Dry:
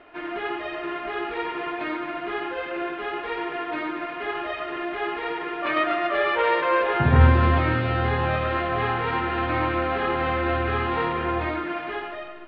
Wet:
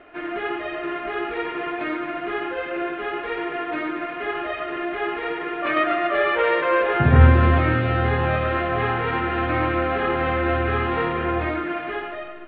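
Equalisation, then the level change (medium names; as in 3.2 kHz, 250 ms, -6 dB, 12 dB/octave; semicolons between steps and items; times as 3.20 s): low-pass 3.1 kHz 12 dB/octave; peaking EQ 940 Hz -7 dB 0.28 oct; +3.0 dB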